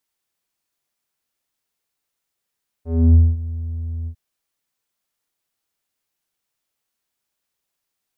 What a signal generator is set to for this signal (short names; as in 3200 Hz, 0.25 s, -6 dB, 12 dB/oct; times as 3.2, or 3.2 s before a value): synth note square E2 12 dB/oct, low-pass 140 Hz, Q 1.7, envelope 2 oct, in 0.33 s, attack 0.292 s, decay 0.22 s, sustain -17.5 dB, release 0.08 s, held 1.22 s